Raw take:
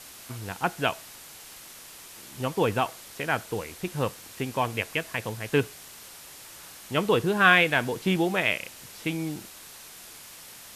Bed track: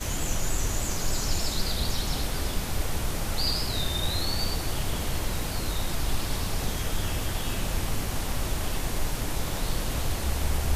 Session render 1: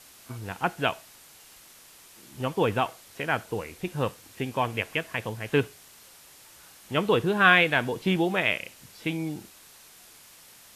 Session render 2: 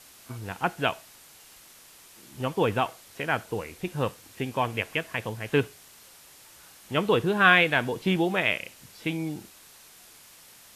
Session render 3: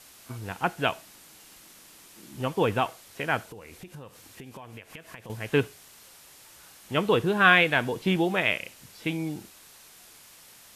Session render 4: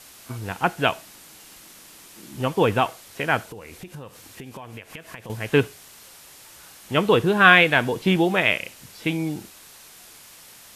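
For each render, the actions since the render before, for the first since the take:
noise print and reduce 6 dB
nothing audible
0.94–2.4 small resonant body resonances 200/300 Hz, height 7 dB; 3.45–5.3 compressor 16:1, threshold -39 dBFS
gain +5 dB

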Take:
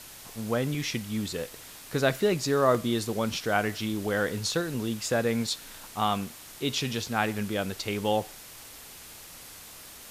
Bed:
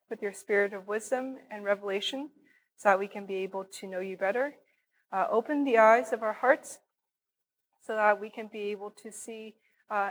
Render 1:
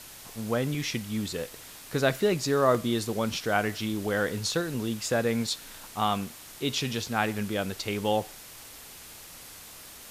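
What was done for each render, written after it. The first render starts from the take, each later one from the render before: nothing audible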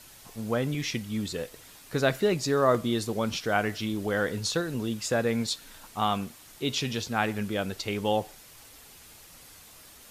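denoiser 6 dB, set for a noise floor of -47 dBFS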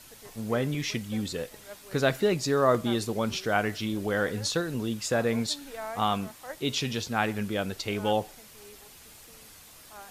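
add bed -17.5 dB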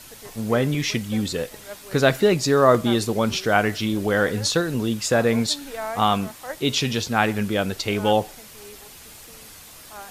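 gain +7 dB

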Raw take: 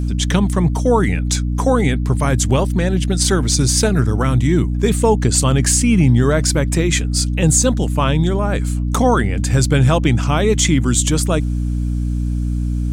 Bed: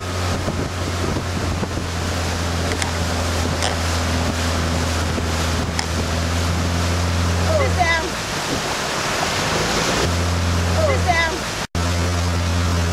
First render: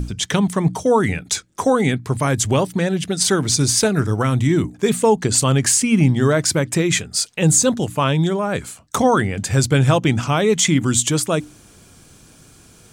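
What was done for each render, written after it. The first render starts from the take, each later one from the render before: notches 60/120/180/240/300 Hz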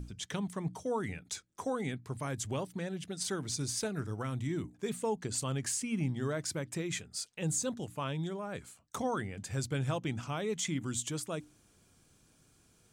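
gain -18.5 dB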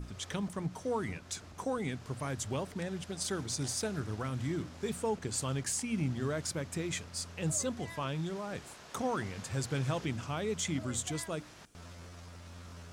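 add bed -30 dB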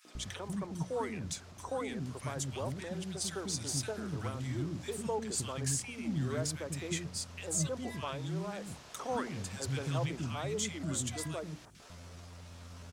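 three bands offset in time highs, mids, lows 50/150 ms, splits 310/1500 Hz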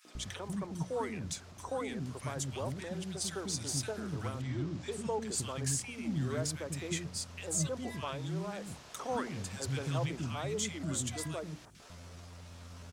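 4.41–5.19 LPF 4400 Hz -> 11000 Hz

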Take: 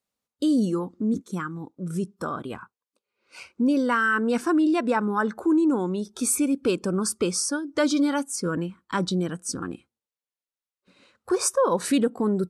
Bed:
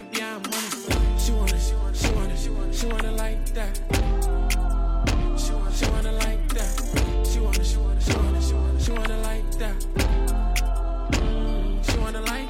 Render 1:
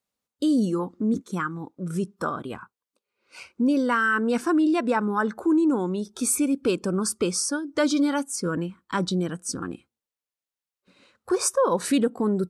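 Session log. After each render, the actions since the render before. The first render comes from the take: 0.79–2.3 bell 1400 Hz +4.5 dB 3 oct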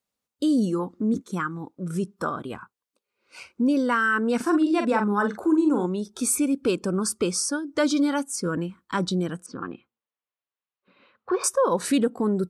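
4.36–5.86 doubler 44 ms -6.5 dB; 9.46–11.44 speaker cabinet 130–3400 Hz, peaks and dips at 170 Hz -4 dB, 300 Hz -4 dB, 1100 Hz +5 dB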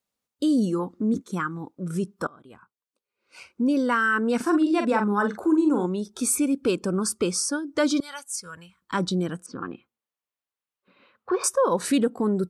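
2.27–3.84 fade in, from -24 dB; 8–8.82 passive tone stack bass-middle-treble 10-0-10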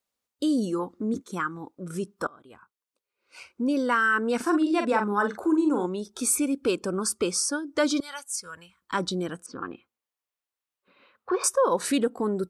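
bell 160 Hz -7 dB 1.4 oct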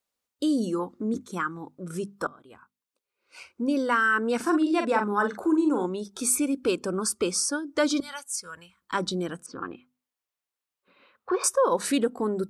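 notches 50/100/150/200/250 Hz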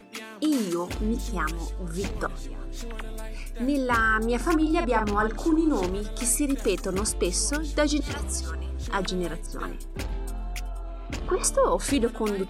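add bed -10.5 dB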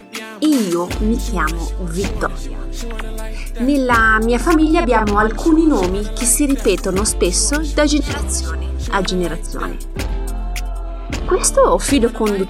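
gain +10 dB; limiter -2 dBFS, peak gain reduction 2 dB

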